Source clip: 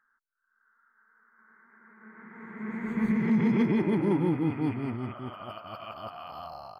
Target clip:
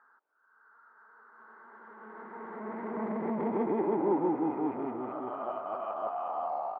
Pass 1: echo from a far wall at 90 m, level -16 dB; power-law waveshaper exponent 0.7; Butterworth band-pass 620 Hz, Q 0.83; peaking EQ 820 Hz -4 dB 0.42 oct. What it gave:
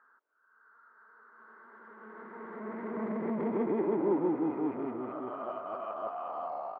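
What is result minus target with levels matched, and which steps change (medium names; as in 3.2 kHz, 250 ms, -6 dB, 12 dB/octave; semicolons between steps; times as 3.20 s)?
1 kHz band -3.0 dB
change: peaking EQ 820 Hz +3.5 dB 0.42 oct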